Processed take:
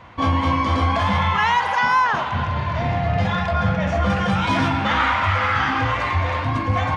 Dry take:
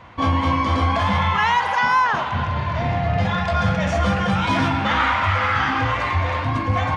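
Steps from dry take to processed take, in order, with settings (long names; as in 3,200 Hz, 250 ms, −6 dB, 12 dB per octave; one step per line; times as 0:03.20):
0:03.47–0:04.10: low-pass filter 2,600 Hz 6 dB per octave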